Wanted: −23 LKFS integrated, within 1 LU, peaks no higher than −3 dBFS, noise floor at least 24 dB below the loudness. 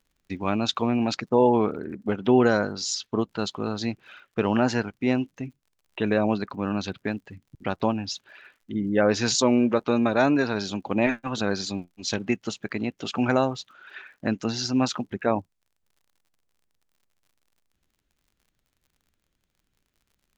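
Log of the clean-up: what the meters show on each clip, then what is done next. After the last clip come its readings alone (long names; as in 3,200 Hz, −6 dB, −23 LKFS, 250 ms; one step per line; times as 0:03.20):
crackle rate 53 per second; integrated loudness −25.5 LKFS; sample peak −6.5 dBFS; target loudness −23.0 LKFS
→ click removal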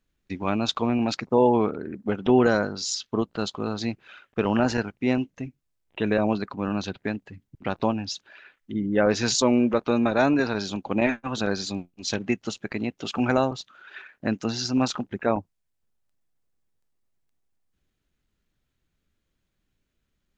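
crackle rate 0.29 per second; integrated loudness −25.5 LKFS; sample peak −6.5 dBFS; target loudness −23.0 LKFS
→ level +2.5 dB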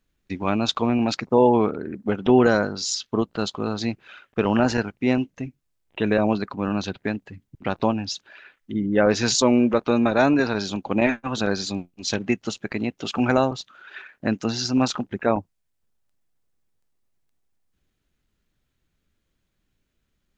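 integrated loudness −23.0 LKFS; sample peak −4.0 dBFS; background noise floor −75 dBFS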